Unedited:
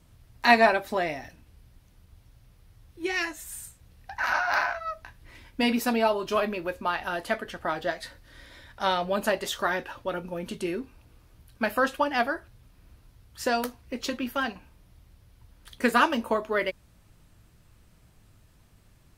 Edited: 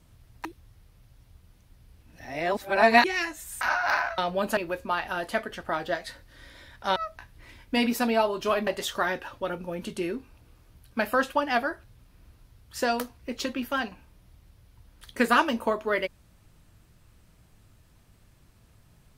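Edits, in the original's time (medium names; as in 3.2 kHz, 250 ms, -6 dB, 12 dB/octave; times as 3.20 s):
0.45–3.04 s: reverse
3.61–4.25 s: delete
4.82–6.53 s: swap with 8.92–9.31 s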